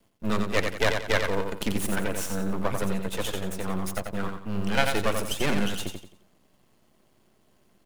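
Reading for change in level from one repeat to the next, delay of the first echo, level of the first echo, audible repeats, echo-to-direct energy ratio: -9.5 dB, 89 ms, -5.5 dB, 4, -5.0 dB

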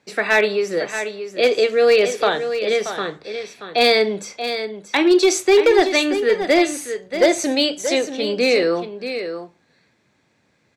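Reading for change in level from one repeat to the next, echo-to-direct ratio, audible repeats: no steady repeat, -9.5 dB, 1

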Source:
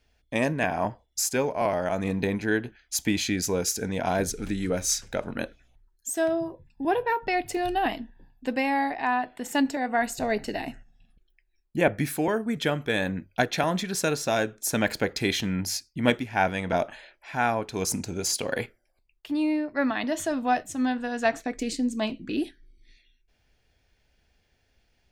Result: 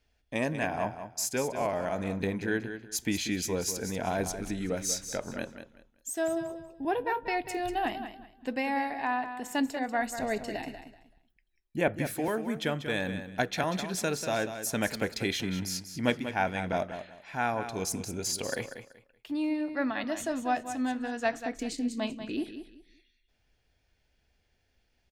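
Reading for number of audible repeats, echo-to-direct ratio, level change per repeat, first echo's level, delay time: 3, -9.5 dB, -12.5 dB, -10.0 dB, 0.19 s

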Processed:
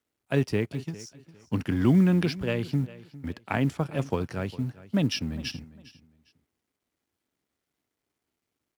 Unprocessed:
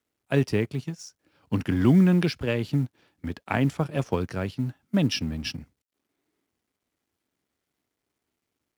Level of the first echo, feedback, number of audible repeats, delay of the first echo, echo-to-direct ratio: -18.5 dB, 26%, 2, 0.404 s, -18.0 dB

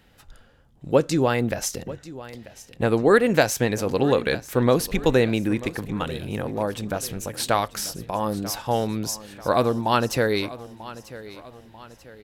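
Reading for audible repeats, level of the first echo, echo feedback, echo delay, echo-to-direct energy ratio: 3, -17.0 dB, 45%, 0.94 s, -16.0 dB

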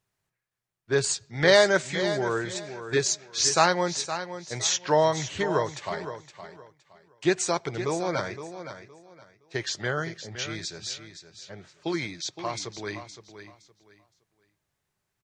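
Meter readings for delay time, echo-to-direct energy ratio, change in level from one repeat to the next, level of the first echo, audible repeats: 0.516 s, -10.5 dB, -12.5 dB, -11.0 dB, 2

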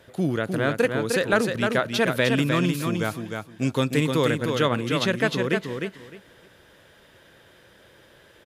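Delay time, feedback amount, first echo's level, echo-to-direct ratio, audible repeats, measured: 0.306 s, 19%, -5.0 dB, -5.0 dB, 3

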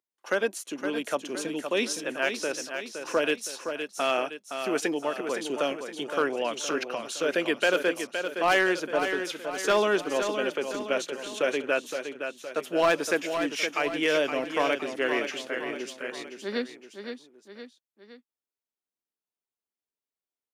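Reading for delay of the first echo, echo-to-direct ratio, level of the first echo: 0.516 s, -6.5 dB, -7.5 dB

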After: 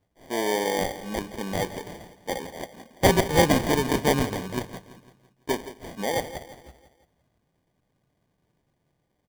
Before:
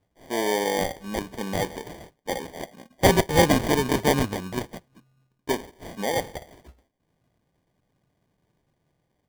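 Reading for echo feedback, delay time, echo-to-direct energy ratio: 49%, 0.168 s, -13.5 dB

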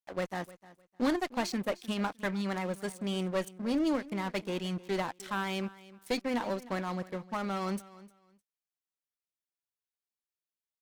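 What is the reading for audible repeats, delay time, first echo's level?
2, 0.305 s, -19.0 dB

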